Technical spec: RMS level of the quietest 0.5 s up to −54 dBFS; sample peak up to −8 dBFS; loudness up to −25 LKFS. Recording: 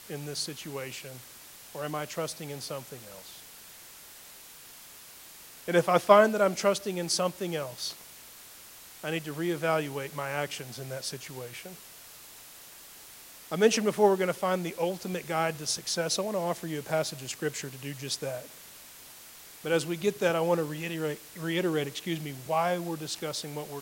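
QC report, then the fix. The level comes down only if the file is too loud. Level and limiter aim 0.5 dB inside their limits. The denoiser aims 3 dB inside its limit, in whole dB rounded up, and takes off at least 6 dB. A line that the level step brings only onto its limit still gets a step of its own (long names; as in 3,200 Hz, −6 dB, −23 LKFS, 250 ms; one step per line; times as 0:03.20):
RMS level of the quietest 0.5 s −50 dBFS: out of spec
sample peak −5.5 dBFS: out of spec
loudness −29.5 LKFS: in spec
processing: broadband denoise 7 dB, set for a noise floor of −50 dBFS
brickwall limiter −8.5 dBFS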